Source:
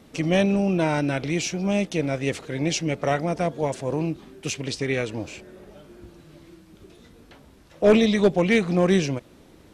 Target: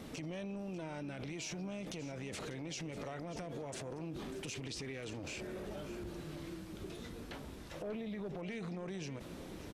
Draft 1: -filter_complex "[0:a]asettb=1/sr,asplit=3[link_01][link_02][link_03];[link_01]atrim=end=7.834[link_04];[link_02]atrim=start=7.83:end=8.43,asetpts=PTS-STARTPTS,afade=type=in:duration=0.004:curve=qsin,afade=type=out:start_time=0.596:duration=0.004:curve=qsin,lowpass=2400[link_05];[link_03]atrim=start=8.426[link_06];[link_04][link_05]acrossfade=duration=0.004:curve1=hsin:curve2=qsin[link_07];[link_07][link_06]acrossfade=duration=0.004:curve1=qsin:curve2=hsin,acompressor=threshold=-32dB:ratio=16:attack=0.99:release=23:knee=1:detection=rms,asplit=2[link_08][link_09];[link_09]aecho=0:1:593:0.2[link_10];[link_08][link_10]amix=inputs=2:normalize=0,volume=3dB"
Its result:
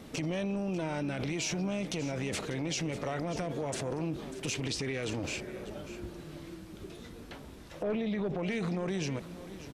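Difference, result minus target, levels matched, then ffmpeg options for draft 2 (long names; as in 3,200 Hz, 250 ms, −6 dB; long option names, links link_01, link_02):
downward compressor: peak gain reduction −9.5 dB
-filter_complex "[0:a]asettb=1/sr,asplit=3[link_01][link_02][link_03];[link_01]atrim=end=7.834[link_04];[link_02]atrim=start=7.83:end=8.43,asetpts=PTS-STARTPTS,afade=type=in:duration=0.004:curve=qsin,afade=type=out:start_time=0.596:duration=0.004:curve=qsin,lowpass=2400[link_05];[link_03]atrim=start=8.426[link_06];[link_04][link_05]acrossfade=duration=0.004:curve1=hsin:curve2=qsin[link_07];[link_07][link_06]acrossfade=duration=0.004:curve1=qsin:curve2=hsin,acompressor=threshold=-42dB:ratio=16:attack=0.99:release=23:knee=1:detection=rms,asplit=2[link_08][link_09];[link_09]aecho=0:1:593:0.2[link_10];[link_08][link_10]amix=inputs=2:normalize=0,volume=3dB"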